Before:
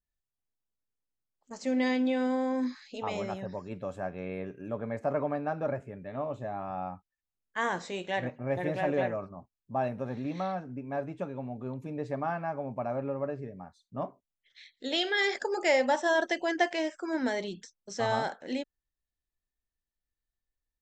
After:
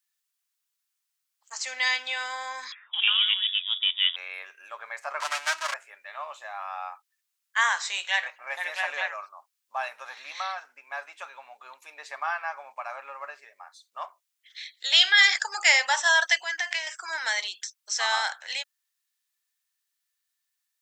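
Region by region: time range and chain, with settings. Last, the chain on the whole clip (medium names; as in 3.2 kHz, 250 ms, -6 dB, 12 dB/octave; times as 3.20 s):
2.72–4.16 s: companding laws mixed up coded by A + frequency inversion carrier 3.6 kHz
5.20–5.74 s: comb filter that takes the minimum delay 3.1 ms + peaking EQ 6.6 kHz +14.5 dB 1.6 oct + loudspeaker Doppler distortion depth 0.21 ms
16.42–16.87 s: peaking EQ 1.9 kHz +4.5 dB 0.35 oct + compression, threshold -32 dBFS
whole clip: high-pass 1 kHz 24 dB/octave; treble shelf 2.1 kHz +8.5 dB; trim +7 dB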